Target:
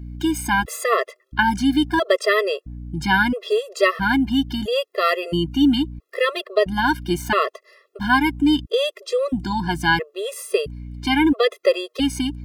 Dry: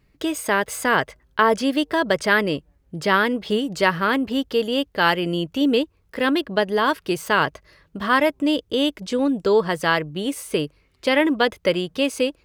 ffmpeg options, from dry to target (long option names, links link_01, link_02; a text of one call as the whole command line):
ffmpeg -i in.wav -af "aeval=exprs='val(0)+0.0158*(sin(2*PI*60*n/s)+sin(2*PI*2*60*n/s)/2+sin(2*PI*3*60*n/s)/3+sin(2*PI*4*60*n/s)/4+sin(2*PI*5*60*n/s)/5)':channel_layout=same,afftfilt=real='re*gt(sin(2*PI*0.75*pts/sr)*(1-2*mod(floor(b*sr/1024/350),2)),0)':imag='im*gt(sin(2*PI*0.75*pts/sr)*(1-2*mod(floor(b*sr/1024/350),2)),0)':win_size=1024:overlap=0.75,volume=4dB" out.wav